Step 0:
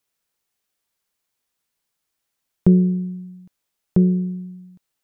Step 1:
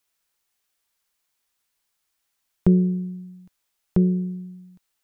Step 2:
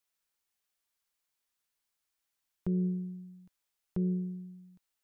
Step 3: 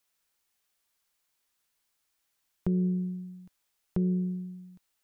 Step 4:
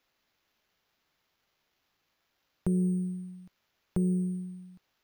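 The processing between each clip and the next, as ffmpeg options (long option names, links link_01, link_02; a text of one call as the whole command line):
ffmpeg -i in.wav -af "equalizer=frequency=125:width_type=o:width=1:gain=-7,equalizer=frequency=250:width_type=o:width=1:gain=-4,equalizer=frequency=500:width_type=o:width=1:gain=-4,volume=2.5dB" out.wav
ffmpeg -i in.wav -af "alimiter=limit=-16dB:level=0:latency=1:release=66,volume=-8.5dB" out.wav
ffmpeg -i in.wav -af "acompressor=threshold=-32dB:ratio=2.5,volume=6.5dB" out.wav
ffmpeg -i in.wav -af "acrusher=samples=5:mix=1:aa=0.000001" out.wav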